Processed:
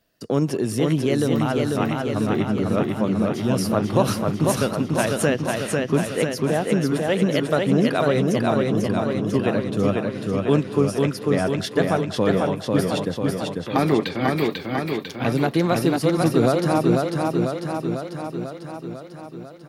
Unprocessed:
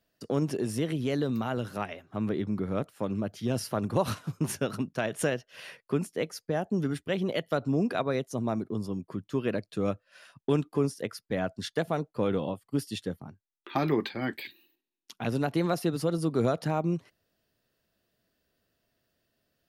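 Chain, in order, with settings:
far-end echo of a speakerphone 190 ms, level −17 dB
feedback echo with a swinging delay time 496 ms, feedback 65%, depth 54 cents, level −3 dB
level +7 dB

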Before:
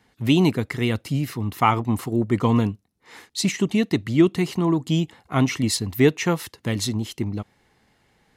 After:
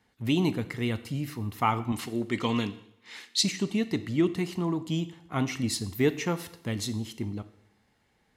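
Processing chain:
0:01.92–0:03.43: meter weighting curve D
coupled-rooms reverb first 0.72 s, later 2.3 s, from −26 dB, DRR 11 dB
level −7.5 dB

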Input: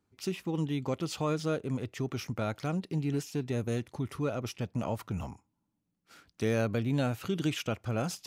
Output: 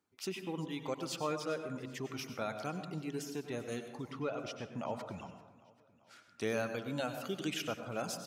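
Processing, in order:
0:04.10–0:06.46: low-pass filter 4,300 Hz → 11,000 Hz 12 dB per octave
reverb reduction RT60 1.8 s
high-pass filter 410 Hz 6 dB per octave
repeating echo 393 ms, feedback 56%, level −21 dB
dense smooth reverb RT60 0.84 s, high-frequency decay 0.45×, pre-delay 85 ms, DRR 7.5 dB
level −1.5 dB

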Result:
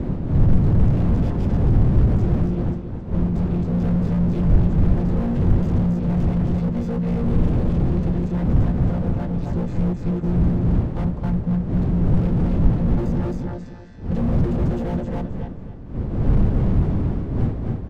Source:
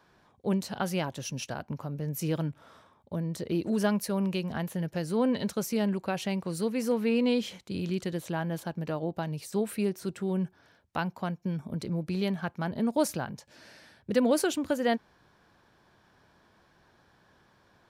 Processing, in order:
channel vocoder with a chord as carrier bare fifth, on A#2
wind on the microphone 170 Hz −27 dBFS
repeating echo 268 ms, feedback 27%, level −5 dB
slew-rate limiting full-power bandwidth 9 Hz
level +8.5 dB

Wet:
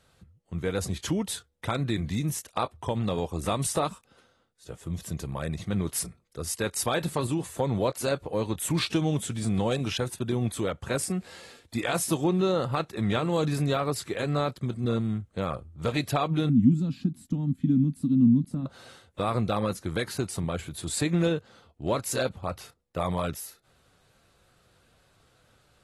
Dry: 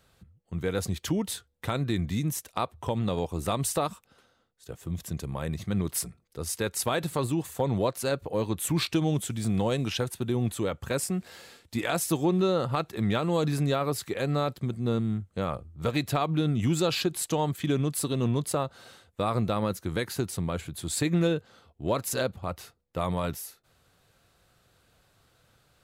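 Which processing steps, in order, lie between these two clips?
0:16.49–0:18.66: drawn EQ curve 120 Hz 0 dB, 260 Hz +13 dB, 390 Hz −22 dB
AAC 32 kbit/s 32,000 Hz

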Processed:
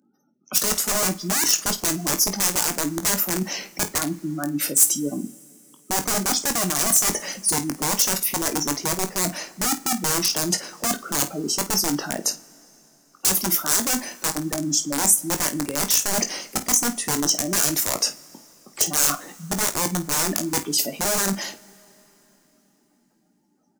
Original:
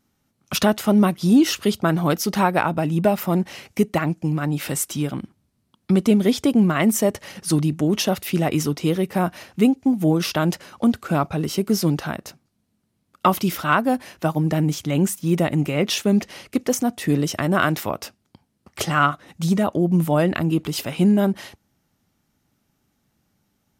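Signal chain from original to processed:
gate on every frequency bin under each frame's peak −15 dB strong
high-pass filter 210 Hz 24 dB per octave
wrap-around overflow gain 16.5 dB
reversed playback
downward compressor 6 to 1, threshold −33 dBFS, peak gain reduction 13 dB
reversed playback
high shelf with overshoot 4,700 Hz +10.5 dB, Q 1.5
on a send: ambience of single reflections 21 ms −9 dB, 51 ms −14.5 dB
on the sum: coupled-rooms reverb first 0.33 s, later 3.8 s, from −18 dB, DRR 13 dB
level +7.5 dB

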